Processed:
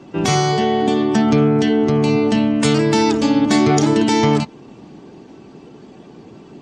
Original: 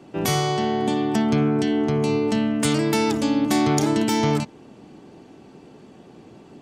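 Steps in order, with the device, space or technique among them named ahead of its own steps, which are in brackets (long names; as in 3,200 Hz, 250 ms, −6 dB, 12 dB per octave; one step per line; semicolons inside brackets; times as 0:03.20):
clip after many re-uploads (low-pass filter 7,500 Hz 24 dB per octave; spectral magnitudes quantised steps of 15 dB)
level +6 dB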